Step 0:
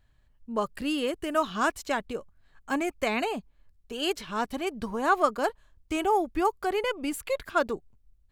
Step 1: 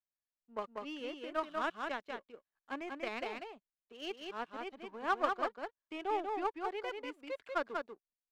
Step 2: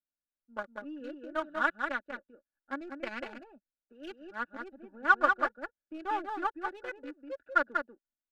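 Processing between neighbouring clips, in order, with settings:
three-band isolator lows -22 dB, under 230 Hz, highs -23 dB, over 4.3 kHz; power-law waveshaper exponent 1.4; delay 191 ms -4 dB; trim -6.5 dB
local Wiener filter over 41 samples; peaking EQ 1.5 kHz +13.5 dB 0.47 oct; comb 3.5 ms, depth 67%

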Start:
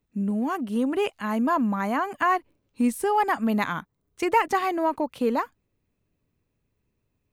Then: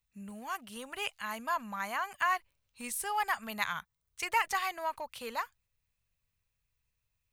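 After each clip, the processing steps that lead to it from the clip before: amplifier tone stack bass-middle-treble 10-0-10; trim +1.5 dB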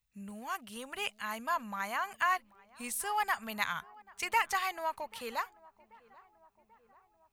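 filtered feedback delay 787 ms, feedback 66%, low-pass 1.5 kHz, level -22.5 dB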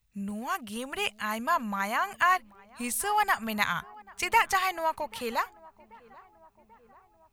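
bass shelf 350 Hz +6.5 dB; trim +5.5 dB

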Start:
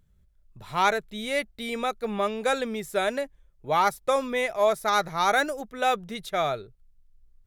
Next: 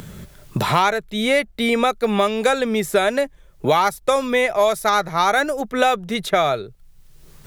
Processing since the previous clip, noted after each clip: three bands compressed up and down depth 100%; trim +6.5 dB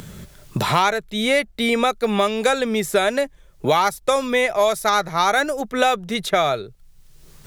peaking EQ 6.1 kHz +3 dB 2 oct; trim -1 dB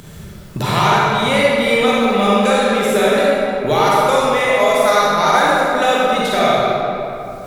reverberation RT60 2.9 s, pre-delay 35 ms, DRR -7 dB; trim -2 dB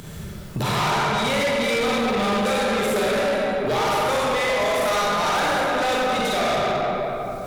saturation -19 dBFS, distortion -7 dB

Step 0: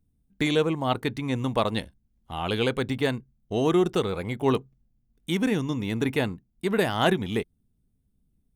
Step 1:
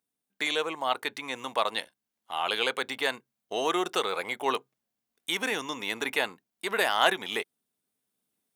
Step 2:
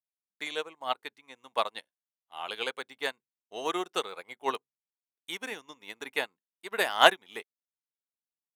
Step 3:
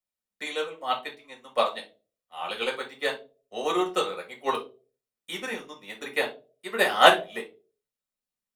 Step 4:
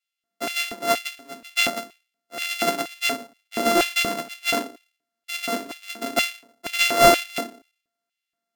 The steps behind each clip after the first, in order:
in parallel at -3 dB: peak limiter -21 dBFS, peak gain reduction 11 dB; on the sum: high-pass 740 Hz 12 dB/octave; gain riding 2 s
upward expansion 2.5:1, over -41 dBFS; trim +6 dB
reverberation RT60 0.35 s, pre-delay 5 ms, DRR 0.5 dB; trim -2 dB
sorted samples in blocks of 64 samples; LFO high-pass square 2.1 Hz 260–2600 Hz; saturation -13.5 dBFS, distortion -9 dB; trim +6 dB

